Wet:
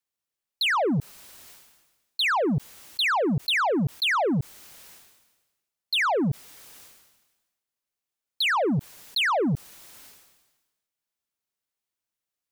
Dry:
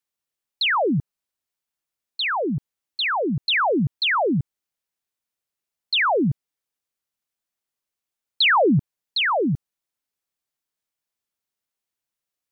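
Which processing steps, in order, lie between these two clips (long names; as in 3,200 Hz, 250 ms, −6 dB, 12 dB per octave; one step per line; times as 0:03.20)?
brickwall limiter −20.5 dBFS, peak gain reduction 7 dB
leveller curve on the samples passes 1
level that may fall only so fast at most 49 dB per second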